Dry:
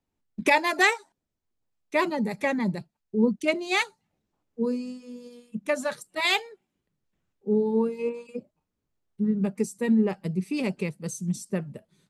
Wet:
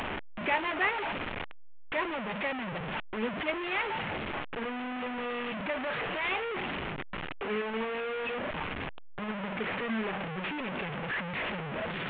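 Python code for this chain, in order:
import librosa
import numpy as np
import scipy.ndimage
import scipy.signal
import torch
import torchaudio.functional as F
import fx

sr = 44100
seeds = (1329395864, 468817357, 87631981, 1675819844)

y = fx.delta_mod(x, sr, bps=16000, step_db=-18.5)
y = fx.low_shelf(y, sr, hz=350.0, db=-9.5)
y = y * 10.0 ** (-6.5 / 20.0)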